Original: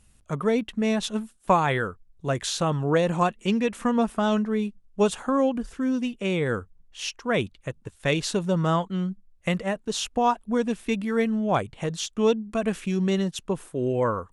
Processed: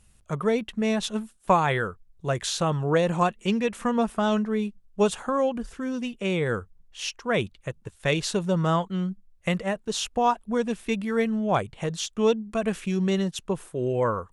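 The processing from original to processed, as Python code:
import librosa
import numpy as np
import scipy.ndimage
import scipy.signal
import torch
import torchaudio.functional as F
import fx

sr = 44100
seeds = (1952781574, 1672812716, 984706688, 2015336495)

y = fx.peak_eq(x, sr, hz=270.0, db=-7.0, octaves=0.25)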